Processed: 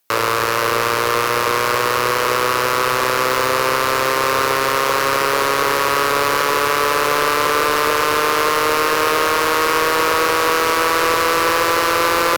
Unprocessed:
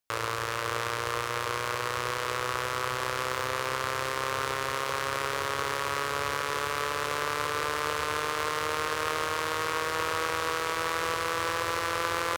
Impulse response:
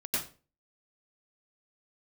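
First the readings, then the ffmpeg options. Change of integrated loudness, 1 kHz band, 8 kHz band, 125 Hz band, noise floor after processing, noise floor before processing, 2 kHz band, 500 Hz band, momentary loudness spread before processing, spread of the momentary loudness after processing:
+13.5 dB, +13.5 dB, +13.0 dB, +8.0 dB, -19 dBFS, -33 dBFS, +12.5 dB, +15.0 dB, 2 LU, 2 LU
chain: -filter_complex "[0:a]highpass=170,acrossover=split=590|4800[a][b][c];[c]asoftclip=type=tanh:threshold=-29.5dB[d];[a][b][d]amix=inputs=3:normalize=0,acontrast=79,equalizer=f=15k:w=1.1:g=8.5,asoftclip=type=hard:threshold=-19.5dB,volume=9dB"

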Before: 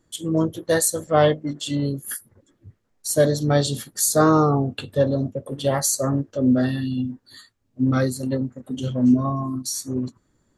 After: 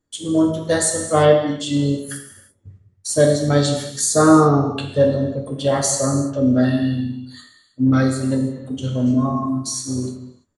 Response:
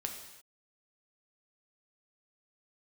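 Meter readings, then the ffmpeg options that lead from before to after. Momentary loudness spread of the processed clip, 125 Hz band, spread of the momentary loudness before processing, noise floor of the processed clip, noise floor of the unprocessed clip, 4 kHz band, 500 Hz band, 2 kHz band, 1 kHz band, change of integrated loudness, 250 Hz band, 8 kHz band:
12 LU, +3.0 dB, 11 LU, -60 dBFS, -67 dBFS, +3.0 dB, +4.0 dB, +3.0 dB, +3.0 dB, +3.5 dB, +4.0 dB, +2.5 dB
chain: -filter_complex "[0:a]agate=range=-13dB:threshold=-51dB:ratio=16:detection=peak[a];[1:a]atrim=start_sample=2205[b];[a][b]afir=irnorm=-1:irlink=0,aresample=22050,aresample=44100,volume=3dB"

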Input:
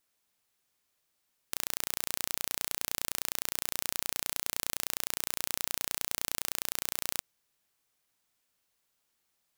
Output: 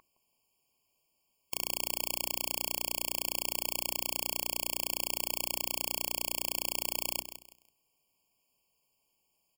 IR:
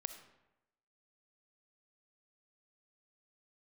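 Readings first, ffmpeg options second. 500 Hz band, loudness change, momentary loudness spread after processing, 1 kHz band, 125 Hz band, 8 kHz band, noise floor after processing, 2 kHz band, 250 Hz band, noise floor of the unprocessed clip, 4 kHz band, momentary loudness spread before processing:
+3.5 dB, +0.5 dB, 2 LU, +1.0 dB, -0.5 dB, 0.0 dB, -78 dBFS, -0.5 dB, +3.0 dB, -78 dBFS, +1.0 dB, 0 LU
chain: -filter_complex "[0:a]aeval=exprs='val(0)+0.00631*sin(2*PI*1300*n/s)':c=same,bandreject=f=60:t=h:w=6,bandreject=f=120:t=h:w=6,bandreject=f=180:t=h:w=6,bandreject=f=240:t=h:w=6,bandreject=f=300:t=h:w=6,bandreject=f=360:t=h:w=6,asplit=2[a][b];[b]aecho=0:1:165|330|495:0.282|0.0761|0.0205[c];[a][c]amix=inputs=2:normalize=0,afftfilt=real='re*eq(mod(floor(b*sr/1024/1100),2),0)':imag='im*eq(mod(floor(b*sr/1024/1100),2),0)':win_size=1024:overlap=0.75,volume=3.5dB"

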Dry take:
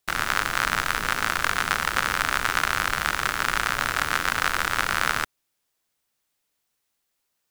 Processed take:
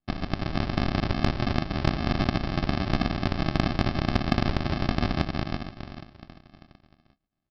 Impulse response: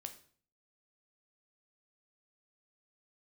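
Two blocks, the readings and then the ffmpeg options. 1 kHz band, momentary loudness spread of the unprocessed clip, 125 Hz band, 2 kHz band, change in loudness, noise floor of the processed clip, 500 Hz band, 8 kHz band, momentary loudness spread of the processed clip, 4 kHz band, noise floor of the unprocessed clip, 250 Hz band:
-7.5 dB, 1 LU, +13.0 dB, -12.5 dB, -4.0 dB, -81 dBFS, +4.5 dB, under -20 dB, 8 LU, -6.0 dB, -77 dBFS, +13.5 dB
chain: -filter_complex "[0:a]asplit=6[a][b][c][d][e][f];[b]adelay=378,afreqshift=-56,volume=-6.5dB[g];[c]adelay=756,afreqshift=-112,volume=-13.4dB[h];[d]adelay=1134,afreqshift=-168,volume=-20.4dB[i];[e]adelay=1512,afreqshift=-224,volume=-27.3dB[j];[f]adelay=1890,afreqshift=-280,volume=-34.2dB[k];[a][g][h][i][j][k]amix=inputs=6:normalize=0,aresample=11025,acrusher=samples=23:mix=1:aa=0.000001,aresample=44100,asoftclip=type=tanh:threshold=-6dB,lowshelf=f=250:g=-4,volume=2dB"

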